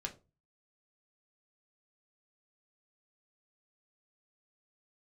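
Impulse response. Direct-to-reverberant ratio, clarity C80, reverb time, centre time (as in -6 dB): 1.5 dB, 21.5 dB, 0.30 s, 9 ms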